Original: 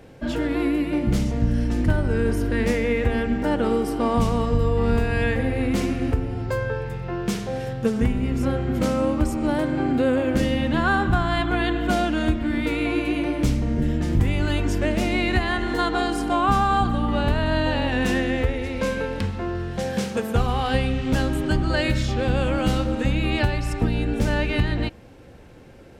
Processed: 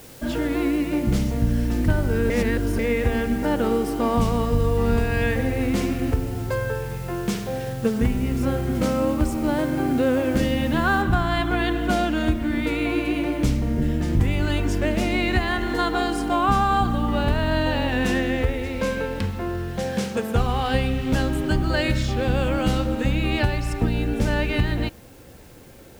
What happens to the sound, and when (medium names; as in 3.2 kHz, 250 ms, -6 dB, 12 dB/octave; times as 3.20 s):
2.30–2.79 s: reverse
11.02 s: noise floor step -47 dB -55 dB